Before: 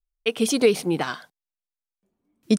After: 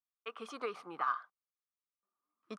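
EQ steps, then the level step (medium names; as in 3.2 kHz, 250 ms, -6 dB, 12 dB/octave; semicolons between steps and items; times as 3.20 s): band-pass filter 1.2 kHz, Q 14; +8.0 dB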